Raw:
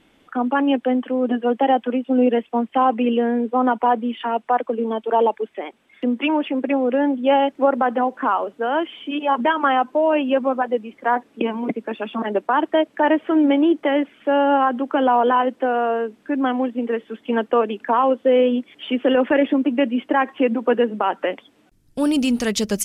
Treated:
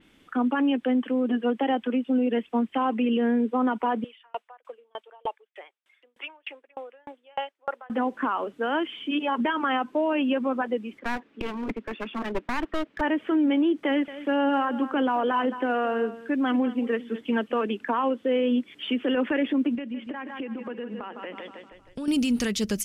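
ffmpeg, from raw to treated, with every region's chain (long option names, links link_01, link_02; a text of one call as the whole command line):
ffmpeg -i in.wav -filter_complex "[0:a]asettb=1/sr,asplit=3[link_01][link_02][link_03];[link_01]atrim=end=4.044[link_04];[link_02]atrim=start=4.04:end=7.9,asetpts=PTS-STARTPTS,afade=type=in:duration=0.004:curve=qsin,afade=type=out:start_time=3.856:duration=0.004:curve=qsin,highpass=frequency=540:width=0.5412,highpass=frequency=540:width=1.3066,aeval=exprs='val(0)*pow(10,-38*if(lt(mod(3.3*n/s,1),2*abs(3.3)/1000),1-mod(3.3*n/s,1)/(2*abs(3.3)/1000),(mod(3.3*n/s,1)-2*abs(3.3)/1000)/(1-2*abs(3.3)/1000))/20)':channel_layout=same[link_05];[link_03]atrim=start=7.896[link_06];[link_04][link_05]acrossfade=duration=0.004:curve1=hsin:curve2=qsin[link_07];[link_07][link_06]acrossfade=duration=0.004:curve1=qsin:curve2=hsin,asettb=1/sr,asplit=3[link_08][link_09][link_10];[link_08]atrim=end=10.994[link_11];[link_09]atrim=start=10.99:end=13.01,asetpts=PTS-STARTPTS,afade=type=in:duration=0.004:curve=qsin,afade=type=out:start_time=2.016:duration=0.004:curve=qsin,lowpass=3000,equalizer=frequency=91:width_type=o:width=2.7:gain=-8,aeval=exprs='clip(val(0),-1,0.0335)':channel_layout=same[link_12];[link_10]atrim=start=13.006[link_13];[link_11][link_12]acrossfade=duration=0.004:curve1=hsin:curve2=qsin[link_14];[link_14][link_13]acrossfade=duration=0.004:curve1=qsin:curve2=hsin,asettb=1/sr,asplit=3[link_15][link_16][link_17];[link_15]atrim=end=13.864[link_18];[link_16]atrim=start=13.86:end=17.67,asetpts=PTS-STARTPTS,afade=type=in:duration=0.004:curve=qsin,afade=type=out:start_time=3.806:duration=0.004:curve=qsin,aecho=1:1:218:0.15,atrim=end_sample=168021,aphaser=in_gain=1:out_gain=1:delay=1.7:decay=0.26:speed=1.8:type=sinusoidal[link_19];[link_17]atrim=start=17.666[link_20];[link_18][link_19]acrossfade=duration=0.004:curve1=hsin:curve2=qsin[link_21];[link_21][link_20]acrossfade=duration=0.004:curve1=qsin:curve2=hsin,asettb=1/sr,asplit=3[link_22][link_23][link_24];[link_22]atrim=end=19.754[link_25];[link_23]atrim=start=19.75:end=22.08,asetpts=PTS-STARTPTS,afade=type=in:duration=0.004:curve=qsin,afade=type=out:start_time=2.326:duration=0.004:curve=qsin,lowpass=7000,aecho=1:1:157|314|471|628|785:0.237|0.114|0.0546|0.0262|0.0126,atrim=end_sample=102753,acompressor=threshold=-29dB:ratio=5:attack=3.2:release=140:knee=1:detection=peak[link_26];[link_24]atrim=start=22.076[link_27];[link_25][link_26]acrossfade=duration=0.004:curve1=hsin:curve2=qsin[link_28];[link_28][link_27]acrossfade=duration=0.004:curve1=qsin:curve2=hsin,equalizer=frequency=700:width_type=o:width=1.3:gain=-8,alimiter=limit=-17dB:level=0:latency=1:release=60,adynamicequalizer=threshold=0.00631:dfrequency=4700:dqfactor=0.7:tfrequency=4700:tqfactor=0.7:attack=5:release=100:ratio=0.375:range=1.5:mode=cutabove:tftype=highshelf" out.wav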